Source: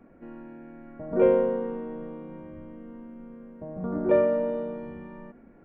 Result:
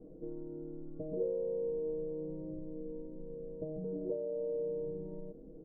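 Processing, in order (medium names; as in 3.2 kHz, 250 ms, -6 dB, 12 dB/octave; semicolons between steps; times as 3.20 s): bass shelf 120 Hz +10 dB; comb 6.4 ms, depth 86%; compression 10:1, threshold -35 dBFS, peak gain reduction 21.5 dB; four-pole ladder low-pass 530 Hz, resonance 60%; trim +5 dB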